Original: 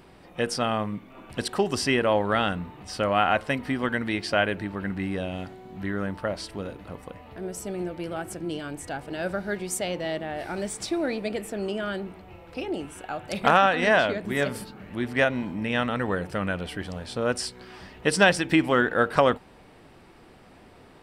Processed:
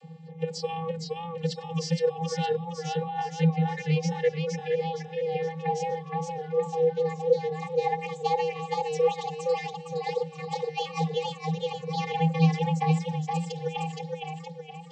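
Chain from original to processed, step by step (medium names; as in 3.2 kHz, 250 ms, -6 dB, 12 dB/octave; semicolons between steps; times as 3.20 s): gliding tape speed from 92% -> 190%; reverb removal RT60 1.8 s; compressor with a negative ratio -27 dBFS, ratio -0.5; painted sound rise, 4.85–6.51 s, 340–1500 Hz -38 dBFS; static phaser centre 360 Hz, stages 6; vocoder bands 32, square 162 Hz; de-hum 266.6 Hz, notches 35; modulated delay 467 ms, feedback 46%, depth 82 cents, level -3 dB; trim +4.5 dB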